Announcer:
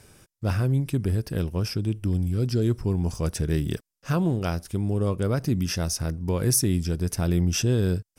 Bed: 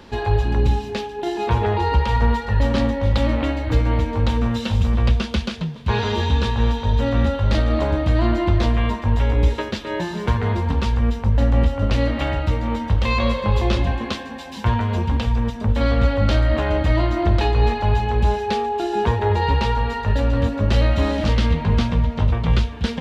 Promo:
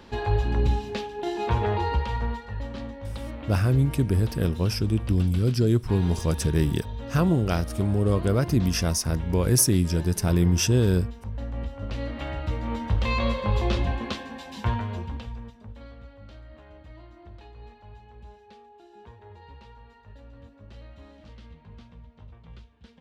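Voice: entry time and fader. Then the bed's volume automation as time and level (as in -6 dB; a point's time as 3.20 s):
3.05 s, +2.0 dB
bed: 1.76 s -5 dB
2.69 s -16.5 dB
11.51 s -16.5 dB
12.88 s -5.5 dB
14.63 s -5.5 dB
16.02 s -29 dB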